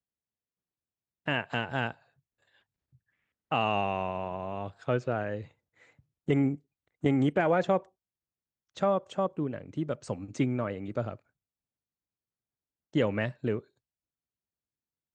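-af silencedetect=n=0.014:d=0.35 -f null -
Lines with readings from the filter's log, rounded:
silence_start: 0.00
silence_end: 1.28 | silence_duration: 1.28
silence_start: 1.91
silence_end: 3.51 | silence_duration: 1.61
silence_start: 5.43
silence_end: 6.29 | silence_duration: 0.86
silence_start: 6.55
silence_end: 7.04 | silence_duration: 0.49
silence_start: 7.79
silence_end: 8.77 | silence_duration: 0.98
silence_start: 11.14
silence_end: 12.95 | silence_duration: 1.82
silence_start: 13.59
silence_end: 15.14 | silence_duration: 1.55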